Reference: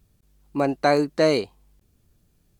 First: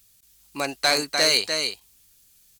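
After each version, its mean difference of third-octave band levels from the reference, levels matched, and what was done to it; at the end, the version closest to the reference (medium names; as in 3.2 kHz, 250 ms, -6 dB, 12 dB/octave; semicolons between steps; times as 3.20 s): 10.5 dB: tilt shelf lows -9.5 dB, about 1.1 kHz; delay 298 ms -6.5 dB; overload inside the chain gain 14 dB; treble shelf 2.5 kHz +9.5 dB; trim -2 dB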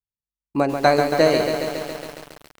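8.0 dB: gate -51 dBFS, range -39 dB; hum notches 60/120/180/240/300/360/420/480/540/600 Hz; transient shaper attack +5 dB, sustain +1 dB; bit-crushed delay 138 ms, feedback 80%, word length 6-bit, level -6 dB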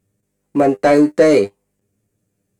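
3.5 dB: bass shelf 85 Hz -12 dB; feedback comb 100 Hz, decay 0.15 s, harmonics all, mix 90%; waveshaping leveller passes 2; graphic EQ 125/250/500/2000/4000/8000 Hz +10/+6/+11/+8/-5/+10 dB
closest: third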